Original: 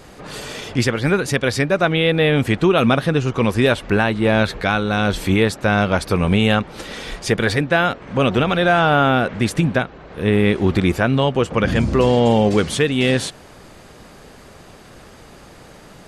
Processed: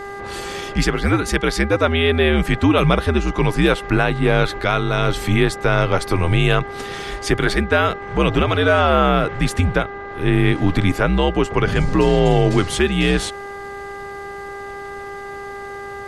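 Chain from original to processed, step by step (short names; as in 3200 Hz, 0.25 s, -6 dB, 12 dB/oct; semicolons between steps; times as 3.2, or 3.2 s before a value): frequency shift -77 Hz; buzz 400 Hz, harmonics 5, -32 dBFS -3 dB/oct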